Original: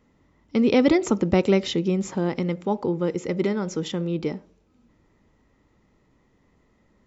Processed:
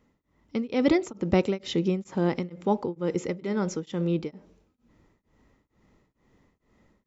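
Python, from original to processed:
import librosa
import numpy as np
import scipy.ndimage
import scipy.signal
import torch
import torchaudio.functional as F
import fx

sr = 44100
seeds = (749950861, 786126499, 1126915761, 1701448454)

p1 = fx.rider(x, sr, range_db=10, speed_s=0.5)
p2 = x + F.gain(torch.from_numpy(p1), 0.0).numpy()
p3 = p2 * np.abs(np.cos(np.pi * 2.2 * np.arange(len(p2)) / sr))
y = F.gain(torch.from_numpy(p3), -7.0).numpy()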